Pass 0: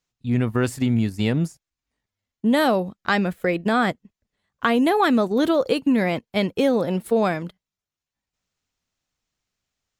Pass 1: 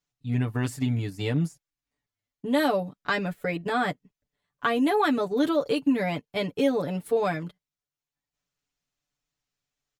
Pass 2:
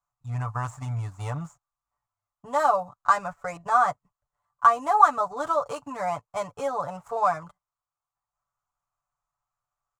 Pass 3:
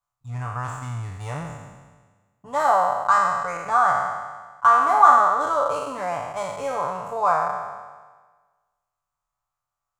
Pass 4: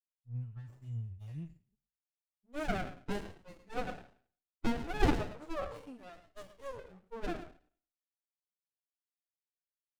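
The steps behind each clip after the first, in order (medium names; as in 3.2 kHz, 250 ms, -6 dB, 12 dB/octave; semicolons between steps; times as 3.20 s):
comb 6.9 ms, depth 92%; trim -7.5 dB
median filter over 9 samples; FFT filter 110 Hz 0 dB, 240 Hz -18 dB, 390 Hz -17 dB, 660 Hz +4 dB, 1.2 kHz +13 dB, 1.7 kHz -5 dB, 3.4 kHz -11 dB, 7.3 kHz +6 dB, 12 kHz -8 dB
spectral sustain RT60 1.41 s; trim -1 dB
expander on every frequency bin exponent 3; speakerphone echo 110 ms, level -11 dB; sliding maximum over 33 samples; trim -5 dB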